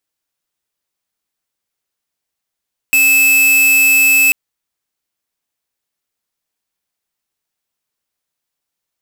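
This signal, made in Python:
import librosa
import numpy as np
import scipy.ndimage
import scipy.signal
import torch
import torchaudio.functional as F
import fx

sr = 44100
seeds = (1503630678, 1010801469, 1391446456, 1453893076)

y = fx.tone(sr, length_s=1.39, wave='square', hz=2610.0, level_db=-10.0)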